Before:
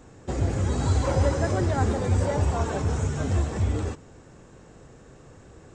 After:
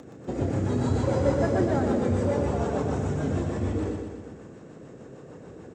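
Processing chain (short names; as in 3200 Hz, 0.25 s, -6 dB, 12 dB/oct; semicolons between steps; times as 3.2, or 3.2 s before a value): HPF 210 Hz 12 dB/oct; tilt -2.5 dB/oct; upward compressor, threshold -38 dBFS; rotary speaker horn 6.7 Hz; doubler 32 ms -12.5 dB; on a send: feedback echo 0.122 s, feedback 58%, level -5 dB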